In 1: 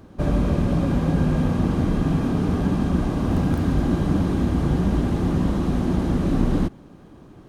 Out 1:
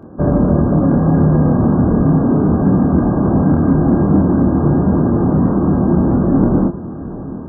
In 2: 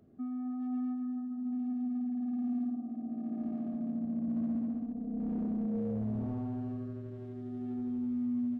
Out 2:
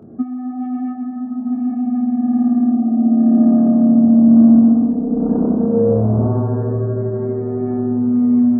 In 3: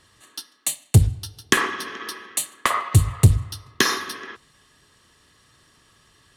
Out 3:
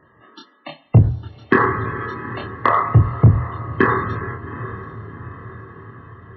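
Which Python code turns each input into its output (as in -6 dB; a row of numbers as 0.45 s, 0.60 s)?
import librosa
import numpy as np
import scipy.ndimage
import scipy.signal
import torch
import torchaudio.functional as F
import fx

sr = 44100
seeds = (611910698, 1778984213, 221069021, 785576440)

y = fx.spacing_loss(x, sr, db_at_10k=30)
y = fx.env_lowpass_down(y, sr, base_hz=2500.0, full_db=-20.0)
y = fx.highpass(y, sr, hz=180.0, slope=6)
y = fx.high_shelf(y, sr, hz=2900.0, db=-8.5)
y = fx.spec_topn(y, sr, count=64)
y = fx.doubler(y, sr, ms=26.0, db=-3.0)
y = fx.echo_diffused(y, sr, ms=785, feedback_pct=55, wet_db=-15.5)
y = 10.0 ** (-12.0 / 20.0) * np.tanh(y / 10.0 ** (-12.0 / 20.0))
y = y * 10.0 ** (-2 / 20.0) / np.max(np.abs(y))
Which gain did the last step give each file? +11.0 dB, +24.0 dB, +10.5 dB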